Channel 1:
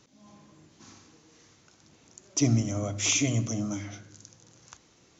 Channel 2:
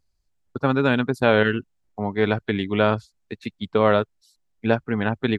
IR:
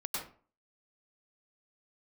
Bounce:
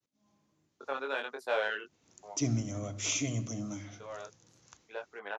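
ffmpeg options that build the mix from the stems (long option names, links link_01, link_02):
-filter_complex "[0:a]agate=range=-33dB:threshold=-56dB:ratio=3:detection=peak,volume=-7dB,afade=type=in:start_time=1.84:duration=0.26:silence=0.266073,asplit=2[link_01][link_02];[1:a]highpass=frequency=460:width=0.5412,highpass=frequency=460:width=1.3066,acontrast=46,flanger=delay=19.5:depth=2.7:speed=0.62,adelay=250,volume=-13.5dB[link_03];[link_02]apad=whole_len=248324[link_04];[link_03][link_04]sidechaincompress=threshold=-53dB:ratio=6:attack=5.2:release=982[link_05];[link_01][link_05]amix=inputs=2:normalize=0"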